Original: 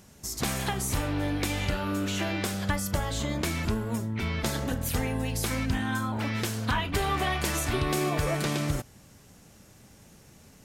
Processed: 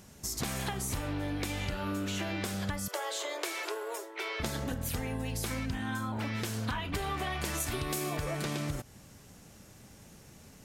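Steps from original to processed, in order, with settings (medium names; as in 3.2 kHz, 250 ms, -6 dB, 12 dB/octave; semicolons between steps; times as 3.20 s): 2.88–4.40 s: steep high-pass 350 Hz 72 dB/octave; 7.60–8.17 s: treble shelf 6.1 kHz +11.5 dB; compression, threshold -31 dBFS, peak gain reduction 9.5 dB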